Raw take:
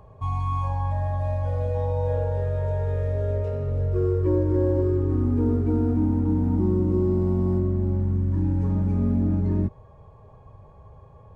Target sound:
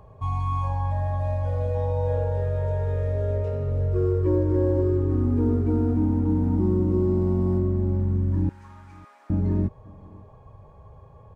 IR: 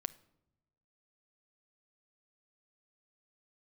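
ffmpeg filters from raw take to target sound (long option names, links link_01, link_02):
-filter_complex "[0:a]asettb=1/sr,asplit=3[link_01][link_02][link_03];[link_01]atrim=end=8.494[link_04];[link_02]atrim=start=8.49:end=9.3,asetpts=PTS-STARTPTS,afade=type=in:duration=0.004:curve=qsin,afade=type=out:start_time=0.806:duration=0.004:curve=qsin,highpass=frequency=1000:width=0.5412,highpass=frequency=1000:width=1.3066[link_05];[link_03]atrim=start=9.296[link_06];[link_04][link_05]acrossfade=duration=0.004:curve1=hsin:curve2=qsin[link_07];[link_07][link_06]acrossfade=duration=0.004:curve1=qsin:curve2=hsin,asplit=2[link_08][link_09];[link_09]aecho=0:1:554:0.0668[link_10];[link_08][link_10]amix=inputs=2:normalize=0"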